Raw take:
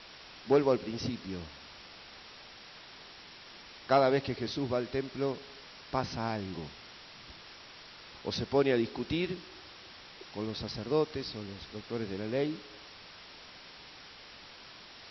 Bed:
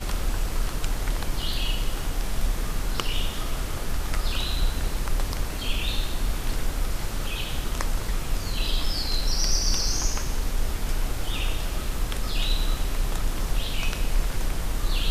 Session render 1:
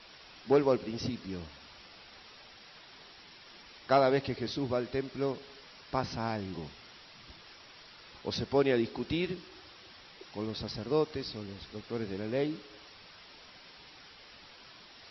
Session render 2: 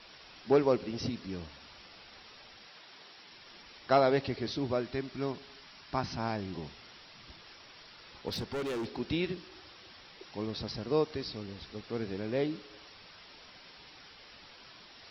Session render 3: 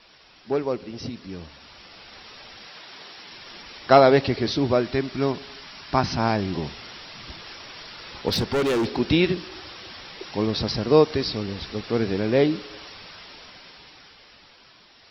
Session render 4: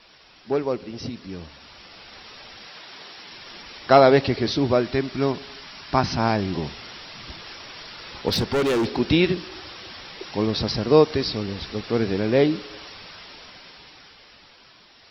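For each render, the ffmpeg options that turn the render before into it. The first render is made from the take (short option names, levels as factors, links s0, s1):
-af "afftdn=nr=6:nf=-52"
-filter_complex "[0:a]asettb=1/sr,asplit=3[s0][s1][s2];[s0]atrim=end=2.674[s3];[s1]atrim=start=2.67:end=3.32,asetpts=PTS-STARTPTS,afade=t=in:d=0.004:c=qsin,afade=t=out:st=0.646:d=0.004:c=qsin,highpass=f=220:p=1[s4];[s2]atrim=start=3.316[s5];[s3][s4]acrossfade=d=0.004:c1=hsin:c2=qsin[s6];[s6][s5]acrossfade=d=0.004:c1=qsin:c2=hsin,asettb=1/sr,asplit=3[s7][s8][s9];[s7]atrim=end=4.824[s10];[s8]atrim=start=4.82:end=6.19,asetpts=PTS-STARTPTS,afade=t=in:d=0.004:c=qsin,afade=t=out:st=1.366:d=0.004:c=qsin,equalizer=f=490:w=4.6:g=-11.5[s11];[s9]atrim=start=6.186[s12];[s10][s11]acrossfade=d=0.004:c1=hsin:c2=qsin[s13];[s13][s12]acrossfade=d=0.004:c1=qsin:c2=hsin,asettb=1/sr,asplit=3[s14][s15][s16];[s14]atrim=end=8.284[s17];[s15]atrim=start=8.28:end=8.96,asetpts=PTS-STARTPTS,afade=t=in:d=0.004:c=qsin,afade=t=out:st=0.676:d=0.004:c=qsin,asoftclip=type=hard:threshold=0.0237[s18];[s16]atrim=start=8.956[s19];[s17][s18]acrossfade=d=0.004:c1=hsin:c2=qsin[s20];[s20][s19]acrossfade=d=0.004:c1=qsin:c2=hsin"
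-af "dynaudnorm=f=230:g=17:m=4.47"
-af "volume=1.12,alimiter=limit=0.708:level=0:latency=1"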